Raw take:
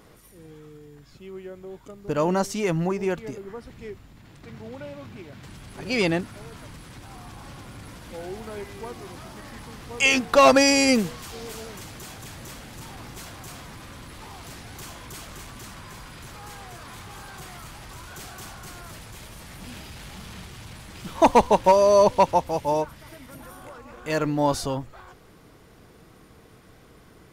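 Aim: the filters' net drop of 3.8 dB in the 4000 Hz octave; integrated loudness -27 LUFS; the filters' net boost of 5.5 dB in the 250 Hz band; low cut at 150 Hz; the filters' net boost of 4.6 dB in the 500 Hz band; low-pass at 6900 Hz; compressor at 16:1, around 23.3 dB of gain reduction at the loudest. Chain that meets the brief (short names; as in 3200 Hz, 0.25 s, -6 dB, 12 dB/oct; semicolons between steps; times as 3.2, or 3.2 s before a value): HPF 150 Hz; LPF 6900 Hz; bell 250 Hz +6 dB; bell 500 Hz +4.5 dB; bell 4000 Hz -4.5 dB; compressor 16:1, threshold -31 dBFS; gain +11.5 dB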